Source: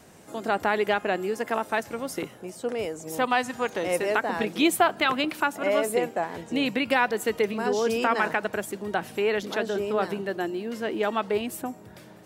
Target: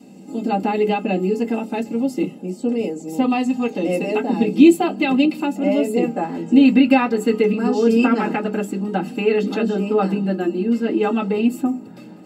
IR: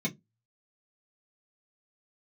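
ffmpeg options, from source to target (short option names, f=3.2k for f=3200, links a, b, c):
-filter_complex "[0:a]asetnsamples=n=441:p=0,asendcmd='6.03 equalizer g 4',equalizer=f=1.4k:t=o:w=0.77:g=-7[a];[1:a]atrim=start_sample=2205,asetrate=52920,aresample=44100[b];[a][b]afir=irnorm=-1:irlink=0,volume=-1.5dB"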